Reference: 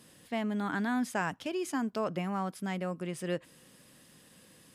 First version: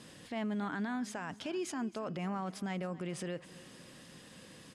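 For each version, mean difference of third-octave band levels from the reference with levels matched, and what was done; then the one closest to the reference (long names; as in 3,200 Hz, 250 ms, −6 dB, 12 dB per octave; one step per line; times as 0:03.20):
5.5 dB: low-pass filter 7,300 Hz 12 dB per octave
downward compressor 4 to 1, threshold −36 dBFS, peak gain reduction 8.5 dB
brickwall limiter −35.5 dBFS, peak gain reduction 8.5 dB
on a send: repeating echo 271 ms, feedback 51%, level −19 dB
on the sum: level +5.5 dB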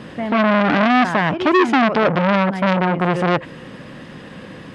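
8.0 dB: low-pass filter 2,200 Hz 12 dB per octave
on a send: backwards echo 142 ms −14.5 dB
on the sum: boost into a limiter +25 dB
saturating transformer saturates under 1,300 Hz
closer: first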